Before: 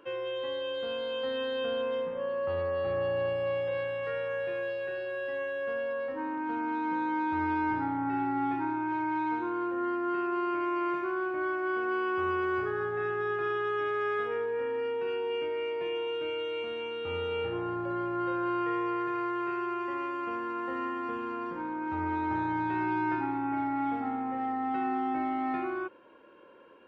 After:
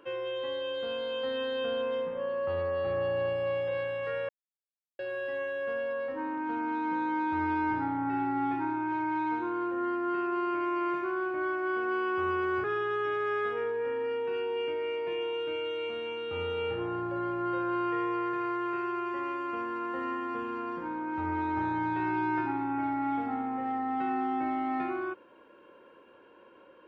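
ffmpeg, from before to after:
-filter_complex "[0:a]asplit=4[a][b][c][d];[a]atrim=end=4.29,asetpts=PTS-STARTPTS,afade=t=out:st=4.286:d=0.004:c=hsin[e];[b]atrim=start=4.29:end=4.99,asetpts=PTS-STARTPTS,volume=0[f];[c]atrim=start=4.99:end=12.642,asetpts=PTS-STARTPTS,afade=t=in:d=0.004:c=hsin[g];[d]atrim=start=13.378[h];[e][f][g]concat=n=3:v=0:a=1[i];[i][h]acrossfade=d=0.004:c1=hsin:c2=hsin"

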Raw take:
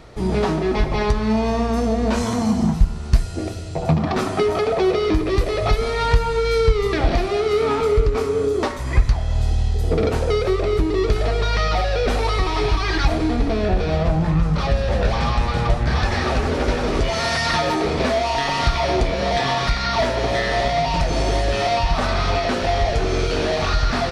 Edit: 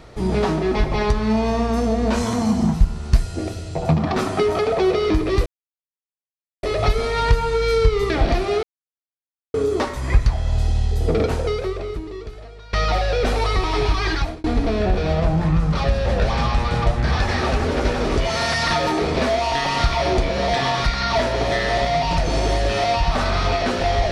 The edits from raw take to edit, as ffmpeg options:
-filter_complex "[0:a]asplit=6[a][b][c][d][e][f];[a]atrim=end=5.46,asetpts=PTS-STARTPTS,afade=t=out:st=5.456:d=0.004:c=hsin,apad=pad_dur=1.17[g];[b]atrim=start=5.46:end=7.46,asetpts=PTS-STARTPTS,afade=t=in:d=0.004:c=hsin,afade=t=out:st=1.996:d=0.004:c=hsin[h];[c]atrim=start=7.46:end=8.37,asetpts=PTS-STARTPTS,volume=0[i];[d]atrim=start=8.37:end=11.56,asetpts=PTS-STARTPTS,afade=t=in:d=0.004:c=hsin,afade=t=out:st=1.68:d=1.51:c=qua:silence=0.0841395[j];[e]atrim=start=11.56:end=13.27,asetpts=PTS-STARTPTS,afade=t=in:d=0.004:c=hsin:silence=0.0841395,afade=t=out:st=1.35:d=0.36[k];[f]atrim=start=13.27,asetpts=PTS-STARTPTS,afade=t=in:d=0.004:c=hsin[l];[g][h][i][j][k][l]concat=n=6:v=0:a=1"

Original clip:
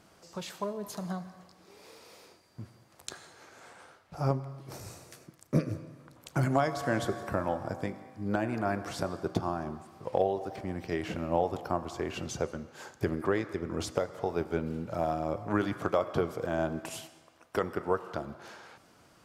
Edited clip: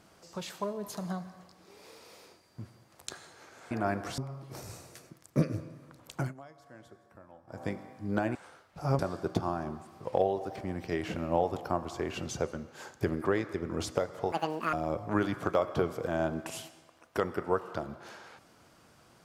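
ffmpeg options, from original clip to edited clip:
-filter_complex "[0:a]asplit=9[a][b][c][d][e][f][g][h][i];[a]atrim=end=3.712[j];[b]atrim=start=8.518:end=8.992[k];[c]atrim=start=4.348:end=6.51,asetpts=PTS-STARTPTS,afade=t=out:st=1.952:d=0.21:silence=0.0707946[l];[d]atrim=start=6.51:end=7.64,asetpts=PTS-STARTPTS,volume=-23dB[m];[e]atrim=start=7.64:end=8.522,asetpts=PTS-STARTPTS,afade=t=in:d=0.21:silence=0.0707946[n];[f]atrim=start=3.708:end=4.352[o];[g]atrim=start=8.988:end=14.324[p];[h]atrim=start=14.32:end=15.12,asetpts=PTS-STARTPTS,asetrate=85995,aresample=44100,atrim=end_sample=18092,asetpts=PTS-STARTPTS[q];[i]atrim=start=15.116[r];[j][k]acrossfade=d=0.004:c1=hsin:c2=hsin[s];[l][m][n]concat=n=3:v=0:a=1[t];[s][t]acrossfade=d=0.004:c1=hsin:c2=hsin[u];[u][o]acrossfade=d=0.004:c1=hsin:c2=hsin[v];[v][p]acrossfade=d=0.004:c1=hsin:c2=hsin[w];[w][q]acrossfade=d=0.004:c1=hsin:c2=hsin[x];[x][r]acrossfade=d=0.004:c1=hsin:c2=hsin"

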